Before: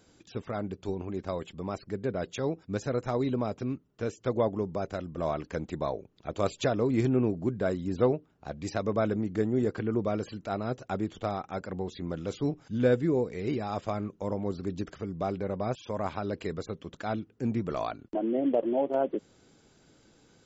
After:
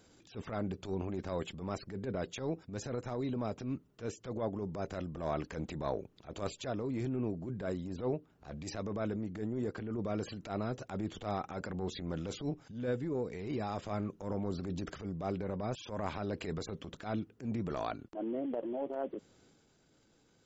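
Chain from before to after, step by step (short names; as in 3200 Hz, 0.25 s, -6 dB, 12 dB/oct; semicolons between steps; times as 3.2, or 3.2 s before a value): vocal rider within 4 dB 0.5 s; transient shaper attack -11 dB, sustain +4 dB; gain -5 dB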